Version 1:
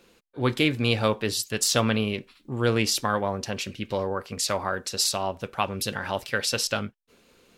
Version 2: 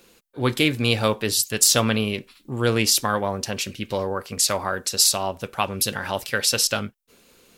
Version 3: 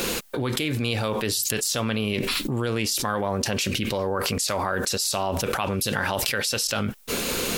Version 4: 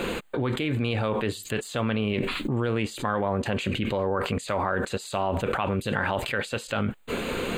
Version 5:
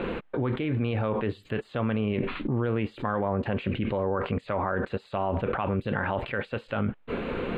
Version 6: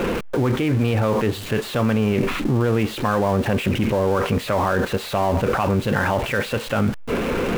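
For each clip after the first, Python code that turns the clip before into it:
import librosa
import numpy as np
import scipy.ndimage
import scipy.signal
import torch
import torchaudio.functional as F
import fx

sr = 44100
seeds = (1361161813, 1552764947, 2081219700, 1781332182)

y1 = fx.high_shelf(x, sr, hz=6800.0, db=11.0)
y1 = y1 * 10.0 ** (2.0 / 20.0)
y2 = fx.env_flatten(y1, sr, amount_pct=100)
y2 = y2 * 10.0 ** (-11.5 / 20.0)
y3 = np.convolve(y2, np.full(8, 1.0 / 8))[:len(y2)]
y4 = fx.air_absorb(y3, sr, metres=460.0)
y5 = y4 + 0.5 * 10.0 ** (-34.0 / 20.0) * np.sign(y4)
y5 = y5 * 10.0 ** (6.5 / 20.0)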